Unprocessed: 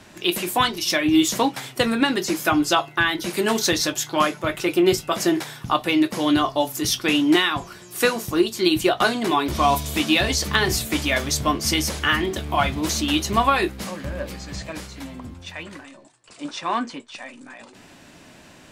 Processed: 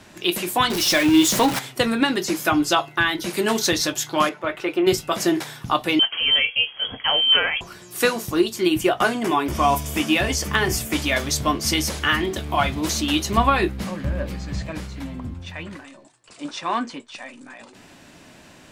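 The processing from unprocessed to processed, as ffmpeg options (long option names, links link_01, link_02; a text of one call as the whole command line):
ffmpeg -i in.wav -filter_complex "[0:a]asettb=1/sr,asplit=3[link_01][link_02][link_03];[link_01]atrim=end=0.704[link_04];[link_02]atrim=start=0.7:end=1.59,asetpts=PTS-STARTPTS,afade=type=in:duration=0.004:curve=qsin,afade=type=out:start_time=0.886:duration=0.004:curve=qsin,aeval=exprs='val(0)+0.5*0.0891*sgn(val(0))':channel_layout=same[link_05];[link_03]atrim=start=1.586[link_06];[link_04][link_05]acrossfade=duration=0.004:curve1=hsin:curve2=qsin[link_07];[link_07][link_06]acrossfade=duration=0.004:curve1=qsin:curve2=hsin,asettb=1/sr,asplit=3[link_08][link_09][link_10];[link_08]atrim=end=4.294[link_11];[link_09]atrim=start=4.29:end=4.87,asetpts=PTS-STARTPTS,afade=type=in:duration=0.004:curve=qsin,afade=type=out:start_time=0.576:duration=0.004:curve=qsin,bass=frequency=250:gain=-11,treble=frequency=4000:gain=-15[link_12];[link_10]atrim=start=4.866[link_13];[link_11][link_12]acrossfade=duration=0.004:curve1=hsin:curve2=qsin[link_14];[link_14][link_13]acrossfade=duration=0.004:curve1=qsin:curve2=hsin,asettb=1/sr,asplit=3[link_15][link_16][link_17];[link_15]atrim=end=5.994[link_18];[link_16]atrim=start=5.99:end=7.61,asetpts=PTS-STARTPTS,afade=type=in:duration=0.004:curve=qsin,afade=type=out:start_time=1.616:duration=0.004:curve=qsin,lowpass=frequency=2900:width_type=q:width=0.5098,lowpass=frequency=2900:width_type=q:width=0.6013,lowpass=frequency=2900:width_type=q:width=0.9,lowpass=frequency=2900:width_type=q:width=2.563,afreqshift=-3400[link_19];[link_17]atrim=start=7.606[link_20];[link_18][link_19]acrossfade=duration=0.004:curve1=hsin:curve2=qsin[link_21];[link_21][link_20]acrossfade=duration=0.004:curve1=qsin:curve2=hsin,asettb=1/sr,asplit=3[link_22][link_23][link_24];[link_22]atrim=end=8.564[link_25];[link_23]atrim=start=8.56:end=10.93,asetpts=PTS-STARTPTS,afade=type=in:duration=0.004:curve=qsin,afade=type=out:start_time=2.366:duration=0.004:curve=qsin,equalizer=frequency=4000:width_type=o:width=0.27:gain=-13.5[link_26];[link_24]atrim=start=10.926[link_27];[link_25][link_26]acrossfade=duration=0.004:curve1=hsin:curve2=qsin[link_28];[link_28][link_27]acrossfade=duration=0.004:curve1=qsin:curve2=hsin,asettb=1/sr,asplit=3[link_29][link_30][link_31];[link_29]atrim=end=13.374[link_32];[link_30]atrim=start=13.37:end=15.76,asetpts=PTS-STARTPTS,afade=type=in:duration=0.004:curve=qsin,afade=type=out:start_time=2.386:duration=0.004:curve=qsin,bass=frequency=250:gain=7,treble=frequency=4000:gain=-5[link_33];[link_31]atrim=start=15.756[link_34];[link_32][link_33]acrossfade=duration=0.004:curve1=hsin:curve2=qsin[link_35];[link_35][link_34]acrossfade=duration=0.004:curve1=qsin:curve2=hsin" out.wav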